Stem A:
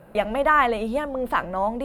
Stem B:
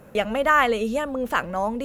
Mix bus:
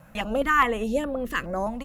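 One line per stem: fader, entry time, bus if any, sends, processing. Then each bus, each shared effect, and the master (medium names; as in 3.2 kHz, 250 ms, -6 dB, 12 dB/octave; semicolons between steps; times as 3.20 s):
-9.0 dB, 0.00 s, no send, bass shelf 400 Hz +11 dB; LFO low-pass sine 1.7 Hz 370–2400 Hz
-2.0 dB, 1.2 ms, no send, high-pass 770 Hz 12 dB/octave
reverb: none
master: step-sequenced notch 4.8 Hz 400–6700 Hz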